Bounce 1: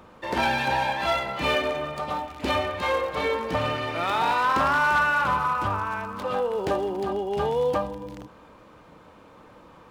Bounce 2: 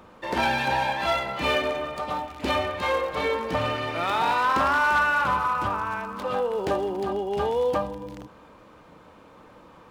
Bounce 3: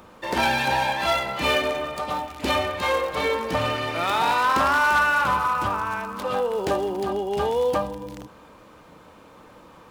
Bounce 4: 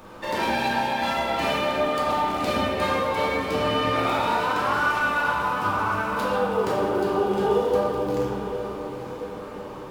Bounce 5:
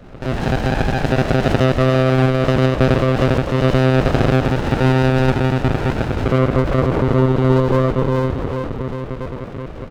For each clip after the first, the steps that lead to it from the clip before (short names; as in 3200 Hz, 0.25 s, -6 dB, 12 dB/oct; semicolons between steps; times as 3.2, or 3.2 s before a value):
notches 50/100/150 Hz
high shelf 5300 Hz +8 dB; gain +1.5 dB
compressor, threshold -29 dBFS, peak gain reduction 12 dB; diffused feedback echo 0.954 s, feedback 42%, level -10 dB; reverb RT60 2.2 s, pre-delay 4 ms, DRR -6 dB
echo 0.39 s -8.5 dB; monotone LPC vocoder at 8 kHz 130 Hz; running maximum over 33 samples; gain +6.5 dB